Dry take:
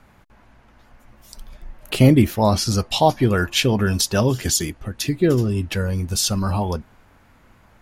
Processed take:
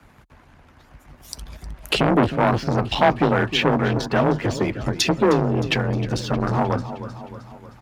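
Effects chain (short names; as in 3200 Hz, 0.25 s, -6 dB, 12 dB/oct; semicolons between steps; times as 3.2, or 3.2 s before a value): treble ducked by the level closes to 1600 Hz, closed at -17.5 dBFS; harmonic-percussive split harmonic -8 dB; in parallel at +1 dB: limiter -16.5 dBFS, peak gain reduction 10 dB; on the sum: sample leveller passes 1; frequency shift +27 Hz; on a send: feedback echo 0.31 s, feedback 55%, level -14.5 dB; on the sum: core saturation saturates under 1000 Hz; gain -1 dB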